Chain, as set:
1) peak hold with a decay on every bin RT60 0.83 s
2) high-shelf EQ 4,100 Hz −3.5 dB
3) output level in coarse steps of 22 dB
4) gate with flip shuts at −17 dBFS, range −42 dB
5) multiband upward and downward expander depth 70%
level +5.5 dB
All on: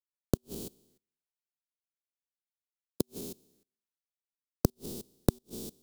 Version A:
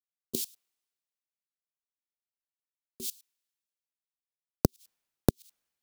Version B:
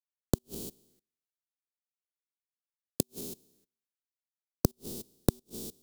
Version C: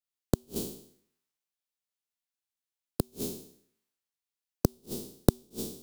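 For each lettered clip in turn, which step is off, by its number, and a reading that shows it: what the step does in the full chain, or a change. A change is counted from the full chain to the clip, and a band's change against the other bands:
1, 8 kHz band +2.5 dB
2, change in crest factor +1.5 dB
3, change in integrated loudness +2.5 LU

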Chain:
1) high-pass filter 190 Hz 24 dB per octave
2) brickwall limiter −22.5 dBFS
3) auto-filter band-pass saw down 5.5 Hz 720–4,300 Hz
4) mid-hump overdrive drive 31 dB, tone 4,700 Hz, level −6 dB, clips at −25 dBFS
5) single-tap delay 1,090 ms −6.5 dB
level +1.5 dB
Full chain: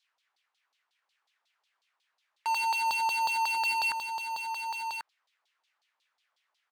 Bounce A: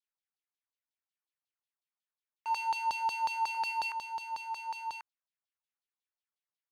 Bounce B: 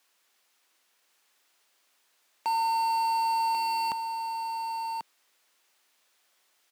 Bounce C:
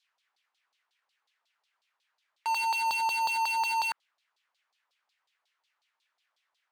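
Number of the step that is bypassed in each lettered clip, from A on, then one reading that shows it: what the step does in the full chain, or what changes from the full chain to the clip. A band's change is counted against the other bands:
4, change in crest factor +3.5 dB
3, 2 kHz band −8.5 dB
5, change in momentary loudness spread −2 LU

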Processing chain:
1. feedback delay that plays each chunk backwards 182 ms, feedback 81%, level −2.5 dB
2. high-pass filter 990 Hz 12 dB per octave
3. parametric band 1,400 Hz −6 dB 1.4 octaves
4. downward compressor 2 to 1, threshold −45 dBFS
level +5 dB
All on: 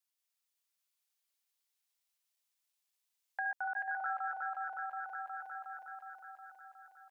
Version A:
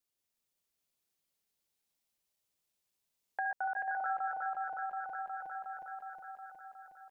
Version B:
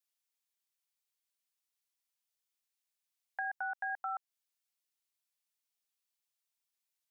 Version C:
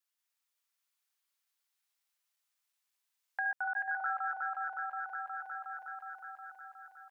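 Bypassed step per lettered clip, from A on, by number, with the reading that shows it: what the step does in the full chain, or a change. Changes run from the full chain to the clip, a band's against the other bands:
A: 2, change in momentary loudness spread −2 LU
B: 1, change in crest factor +3.5 dB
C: 3, change in integrated loudness +2.5 LU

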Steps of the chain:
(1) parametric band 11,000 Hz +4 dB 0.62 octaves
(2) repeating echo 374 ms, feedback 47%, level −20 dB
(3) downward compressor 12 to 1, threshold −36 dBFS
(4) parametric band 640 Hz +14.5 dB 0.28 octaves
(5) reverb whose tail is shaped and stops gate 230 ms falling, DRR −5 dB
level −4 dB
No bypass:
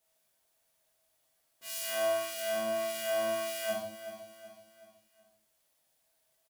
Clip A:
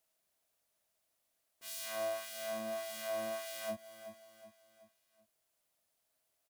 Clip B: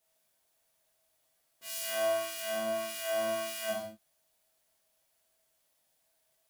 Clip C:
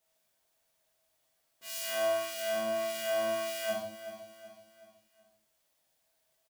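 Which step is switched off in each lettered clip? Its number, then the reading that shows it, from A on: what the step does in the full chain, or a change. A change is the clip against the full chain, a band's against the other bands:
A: 5, change in momentary loudness spread −2 LU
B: 2, change in momentary loudness spread −8 LU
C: 1, 8 kHz band −1.5 dB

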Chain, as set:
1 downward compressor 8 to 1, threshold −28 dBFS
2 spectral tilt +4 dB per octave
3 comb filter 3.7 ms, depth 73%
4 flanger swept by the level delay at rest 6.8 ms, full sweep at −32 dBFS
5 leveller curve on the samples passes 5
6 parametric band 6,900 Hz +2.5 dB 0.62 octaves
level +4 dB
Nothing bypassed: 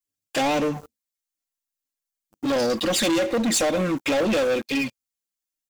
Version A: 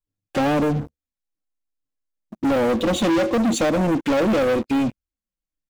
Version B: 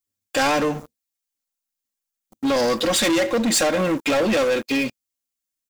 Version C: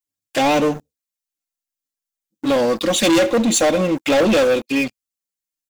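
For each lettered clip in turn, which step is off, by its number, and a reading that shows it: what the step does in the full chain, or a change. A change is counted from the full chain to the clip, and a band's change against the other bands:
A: 2, 8 kHz band −8.5 dB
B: 4, 125 Hz band −2.0 dB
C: 1, average gain reduction 3.0 dB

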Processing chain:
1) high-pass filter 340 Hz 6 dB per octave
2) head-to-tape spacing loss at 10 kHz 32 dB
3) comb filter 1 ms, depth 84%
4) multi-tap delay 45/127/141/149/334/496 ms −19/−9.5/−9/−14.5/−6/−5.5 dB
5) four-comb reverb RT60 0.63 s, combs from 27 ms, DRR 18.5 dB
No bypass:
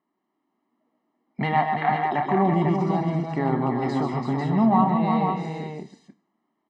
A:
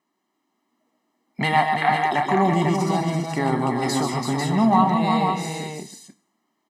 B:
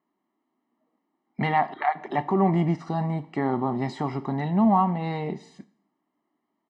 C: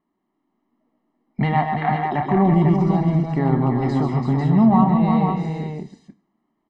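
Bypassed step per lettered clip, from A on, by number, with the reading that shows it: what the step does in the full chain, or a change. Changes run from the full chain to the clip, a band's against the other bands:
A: 2, 4 kHz band +10.0 dB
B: 4, echo-to-direct ratio −1.0 dB to −18.5 dB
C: 1, change in integrated loudness +4.5 LU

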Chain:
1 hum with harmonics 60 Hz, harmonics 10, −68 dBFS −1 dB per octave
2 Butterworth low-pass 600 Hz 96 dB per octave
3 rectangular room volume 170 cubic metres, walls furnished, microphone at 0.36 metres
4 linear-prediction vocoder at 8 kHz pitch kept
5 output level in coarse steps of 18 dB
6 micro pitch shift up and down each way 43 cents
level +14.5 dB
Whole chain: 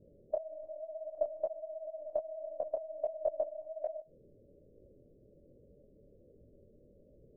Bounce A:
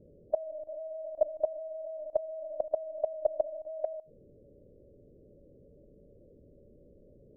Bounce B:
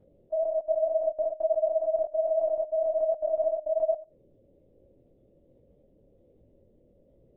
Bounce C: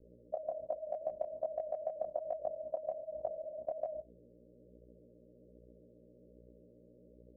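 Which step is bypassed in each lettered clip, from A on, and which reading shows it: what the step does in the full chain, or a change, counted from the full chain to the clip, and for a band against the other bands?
6, change in crest factor +1.5 dB
2, change in crest factor −7.5 dB
4, change in momentary loudness spread −5 LU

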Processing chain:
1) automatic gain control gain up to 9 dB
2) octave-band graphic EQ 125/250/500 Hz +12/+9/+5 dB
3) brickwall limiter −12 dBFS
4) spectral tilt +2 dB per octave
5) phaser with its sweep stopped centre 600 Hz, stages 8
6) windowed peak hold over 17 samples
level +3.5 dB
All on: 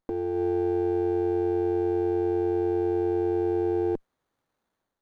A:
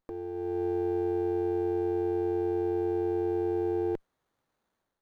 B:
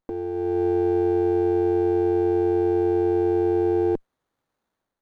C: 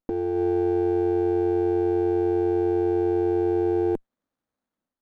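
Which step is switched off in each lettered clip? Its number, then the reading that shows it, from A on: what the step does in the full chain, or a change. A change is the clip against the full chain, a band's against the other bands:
2, change in momentary loudness spread +2 LU
3, average gain reduction 4.0 dB
4, change in integrated loudness +3.0 LU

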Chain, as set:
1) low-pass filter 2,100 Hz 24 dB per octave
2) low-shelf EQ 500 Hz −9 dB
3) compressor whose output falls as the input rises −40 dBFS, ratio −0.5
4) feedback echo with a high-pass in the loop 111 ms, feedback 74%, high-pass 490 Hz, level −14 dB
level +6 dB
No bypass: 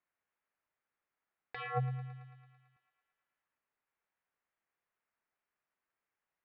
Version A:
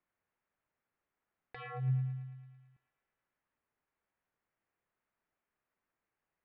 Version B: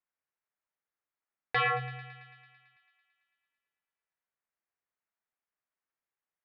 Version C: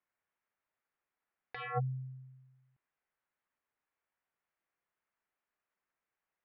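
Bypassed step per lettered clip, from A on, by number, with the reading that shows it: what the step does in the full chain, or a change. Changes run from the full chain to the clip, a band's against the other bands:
2, 125 Hz band +11.5 dB
3, 125 Hz band −15.5 dB
4, echo-to-direct ratio −12.0 dB to none audible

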